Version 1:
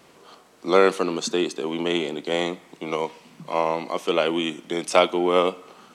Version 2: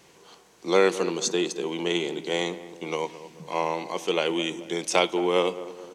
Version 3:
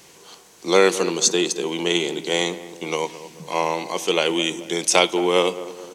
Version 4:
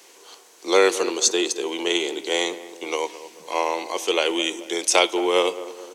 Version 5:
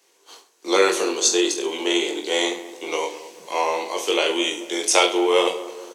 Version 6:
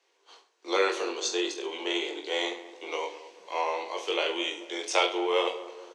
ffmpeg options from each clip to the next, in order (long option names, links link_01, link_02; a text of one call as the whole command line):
ffmpeg -i in.wav -filter_complex "[0:a]equalizer=frequency=250:width_type=o:width=0.33:gain=-9,equalizer=frequency=630:width_type=o:width=0.33:gain=-7,equalizer=frequency=1250:width_type=o:width=0.33:gain=-8,equalizer=frequency=6300:width_type=o:width=0.33:gain=6,asplit=2[link_01][link_02];[link_02]adelay=217,lowpass=frequency=1100:poles=1,volume=-13dB,asplit=2[link_03][link_04];[link_04]adelay=217,lowpass=frequency=1100:poles=1,volume=0.52,asplit=2[link_05][link_06];[link_06]adelay=217,lowpass=frequency=1100:poles=1,volume=0.52,asplit=2[link_07][link_08];[link_08]adelay=217,lowpass=frequency=1100:poles=1,volume=0.52,asplit=2[link_09][link_10];[link_10]adelay=217,lowpass=frequency=1100:poles=1,volume=0.52[link_11];[link_01][link_03][link_05][link_07][link_09][link_11]amix=inputs=6:normalize=0,volume=-1dB" out.wav
ffmpeg -i in.wav -af "highshelf=frequency=4200:gain=9,volume=4dB" out.wav
ffmpeg -i in.wav -af "highpass=frequency=300:width=0.5412,highpass=frequency=300:width=1.3066,volume=-1dB" out.wav
ffmpeg -i in.wav -filter_complex "[0:a]agate=range=-12dB:threshold=-46dB:ratio=16:detection=peak,asplit=2[link_01][link_02];[link_02]aecho=0:1:20|43|69.45|99.87|134.8:0.631|0.398|0.251|0.158|0.1[link_03];[link_01][link_03]amix=inputs=2:normalize=0,volume=-1dB" out.wav
ffmpeg -i in.wav -af "highpass=380,lowpass=4300,volume=-6.5dB" out.wav